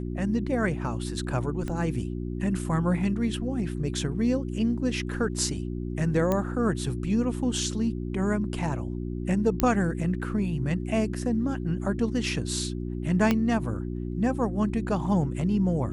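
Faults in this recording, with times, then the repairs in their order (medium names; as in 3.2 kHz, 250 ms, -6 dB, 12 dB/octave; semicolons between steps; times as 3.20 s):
hum 60 Hz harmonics 6 -32 dBFS
1.68 s: pop -21 dBFS
6.32 s: pop -13 dBFS
9.60 s: pop -8 dBFS
13.31 s: pop -10 dBFS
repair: de-click; de-hum 60 Hz, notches 6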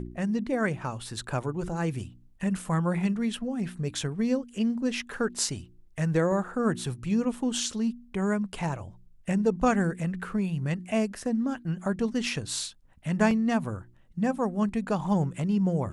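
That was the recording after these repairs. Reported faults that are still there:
1.68 s: pop
6.32 s: pop
13.31 s: pop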